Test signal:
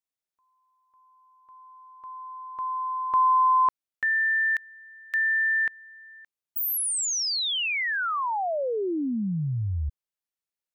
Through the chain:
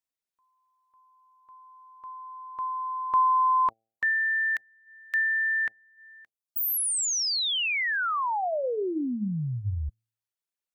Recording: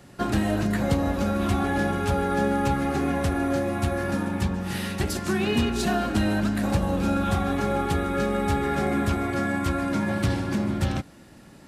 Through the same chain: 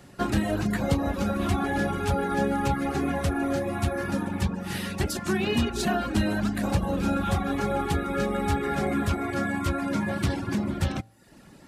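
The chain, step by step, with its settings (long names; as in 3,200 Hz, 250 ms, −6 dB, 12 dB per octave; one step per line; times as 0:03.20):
hum removal 112.1 Hz, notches 7
reverb reduction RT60 0.64 s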